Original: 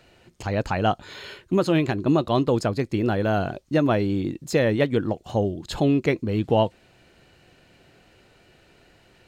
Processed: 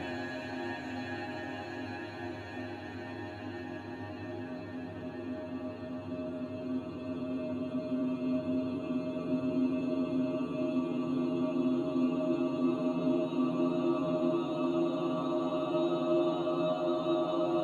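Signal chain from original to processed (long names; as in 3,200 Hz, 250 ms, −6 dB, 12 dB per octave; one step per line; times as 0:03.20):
low-shelf EQ 200 Hz −5.5 dB
in parallel at +2.5 dB: brickwall limiter −19.5 dBFS, peak gain reduction 10 dB
on the sum: time stretch by phase vocoder 1.9×
shaped tremolo saw down 5.6 Hz, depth 50%
extreme stretch with random phases 38×, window 0.50 s, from 0:03.67
stiff-string resonator 85 Hz, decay 0.4 s, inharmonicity 0.002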